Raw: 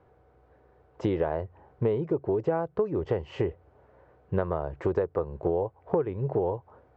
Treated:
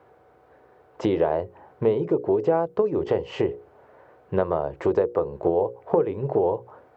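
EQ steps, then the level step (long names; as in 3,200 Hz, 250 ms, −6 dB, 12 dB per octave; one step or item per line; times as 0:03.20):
high-pass filter 310 Hz 6 dB per octave
mains-hum notches 60/120/180/240/300/360/420/480/540 Hz
dynamic equaliser 1,600 Hz, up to −6 dB, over −48 dBFS, Q 1.1
+8.5 dB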